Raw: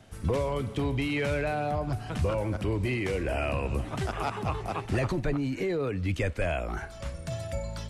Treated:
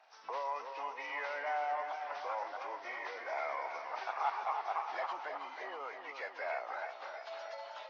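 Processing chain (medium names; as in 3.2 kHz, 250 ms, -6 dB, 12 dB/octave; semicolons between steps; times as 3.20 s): knee-point frequency compression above 1.6 kHz 1.5:1; ladder high-pass 740 Hz, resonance 55%; modulated delay 319 ms, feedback 64%, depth 66 cents, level -7.5 dB; trim +2.5 dB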